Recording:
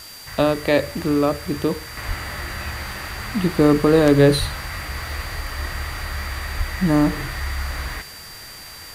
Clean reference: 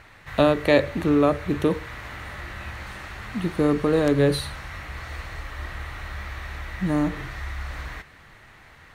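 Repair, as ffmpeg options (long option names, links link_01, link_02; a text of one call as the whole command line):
ffmpeg -i in.wav -filter_complex "[0:a]bandreject=frequency=4700:width=30,asplit=3[link_01][link_02][link_03];[link_01]afade=type=out:start_time=2.07:duration=0.02[link_04];[link_02]highpass=frequency=140:width=0.5412,highpass=frequency=140:width=1.3066,afade=type=in:start_time=2.07:duration=0.02,afade=type=out:start_time=2.19:duration=0.02[link_05];[link_03]afade=type=in:start_time=2.19:duration=0.02[link_06];[link_04][link_05][link_06]amix=inputs=3:normalize=0,asplit=3[link_07][link_08][link_09];[link_07]afade=type=out:start_time=4.39:duration=0.02[link_10];[link_08]highpass=frequency=140:width=0.5412,highpass=frequency=140:width=1.3066,afade=type=in:start_time=4.39:duration=0.02,afade=type=out:start_time=4.51:duration=0.02[link_11];[link_09]afade=type=in:start_time=4.51:duration=0.02[link_12];[link_10][link_11][link_12]amix=inputs=3:normalize=0,asplit=3[link_13][link_14][link_15];[link_13]afade=type=out:start_time=6.57:duration=0.02[link_16];[link_14]highpass=frequency=140:width=0.5412,highpass=frequency=140:width=1.3066,afade=type=in:start_time=6.57:duration=0.02,afade=type=out:start_time=6.69:duration=0.02[link_17];[link_15]afade=type=in:start_time=6.69:duration=0.02[link_18];[link_16][link_17][link_18]amix=inputs=3:normalize=0,afwtdn=0.0089,asetnsamples=nb_out_samples=441:pad=0,asendcmd='1.97 volume volume -6dB',volume=0dB" out.wav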